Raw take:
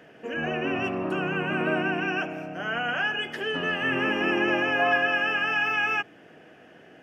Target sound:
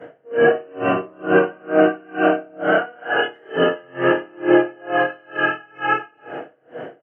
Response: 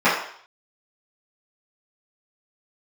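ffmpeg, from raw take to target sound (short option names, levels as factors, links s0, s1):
-filter_complex "[0:a]equalizer=f=500:t=o:w=1:g=6,equalizer=f=2000:t=o:w=1:g=6,equalizer=f=4000:t=o:w=1:g=-8,asplit=2[s0][s1];[s1]adelay=180,highpass=300,lowpass=3400,asoftclip=type=hard:threshold=0.168,volume=0.126[s2];[s0][s2]amix=inputs=2:normalize=0,acompressor=threshold=0.0447:ratio=6,asplit=2[s3][s4];[s4]adelay=29,volume=0.266[s5];[s3][s5]amix=inputs=2:normalize=0[s6];[1:a]atrim=start_sample=2205,asetrate=25578,aresample=44100[s7];[s6][s7]afir=irnorm=-1:irlink=0,aeval=exprs='val(0)*pow(10,-33*(0.5-0.5*cos(2*PI*2.2*n/s))/20)':c=same,volume=0.316"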